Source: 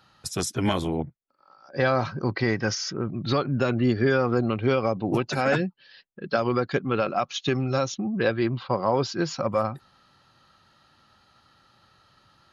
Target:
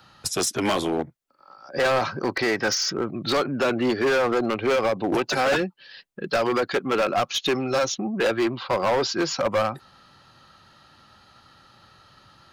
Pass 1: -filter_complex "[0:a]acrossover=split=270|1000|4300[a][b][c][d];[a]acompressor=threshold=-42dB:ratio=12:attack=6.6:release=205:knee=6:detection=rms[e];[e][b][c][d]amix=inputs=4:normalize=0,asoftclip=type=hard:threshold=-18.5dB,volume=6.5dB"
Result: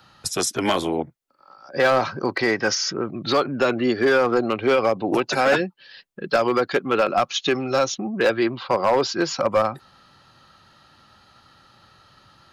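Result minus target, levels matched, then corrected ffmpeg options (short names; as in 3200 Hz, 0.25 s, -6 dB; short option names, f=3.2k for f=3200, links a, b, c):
hard clip: distortion -9 dB
-filter_complex "[0:a]acrossover=split=270|1000|4300[a][b][c][d];[a]acompressor=threshold=-42dB:ratio=12:attack=6.6:release=205:knee=6:detection=rms[e];[e][b][c][d]amix=inputs=4:normalize=0,asoftclip=type=hard:threshold=-24.5dB,volume=6.5dB"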